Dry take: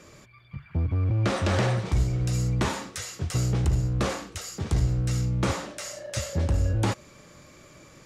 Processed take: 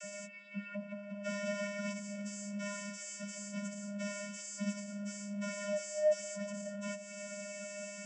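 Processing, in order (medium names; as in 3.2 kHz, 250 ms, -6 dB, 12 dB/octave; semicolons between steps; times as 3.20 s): partials quantised in pitch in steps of 3 st; treble shelf 3.4 kHz +9.5 dB; compression, threshold -29 dBFS, peak gain reduction 14 dB; peak limiter -26 dBFS, peak gain reduction 9 dB; saturation -30.5 dBFS, distortion -17 dB; static phaser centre 1.1 kHz, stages 6; vocoder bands 32, square 203 Hz; flange 1.1 Hz, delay 2 ms, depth 1.9 ms, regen +74%; trim +7 dB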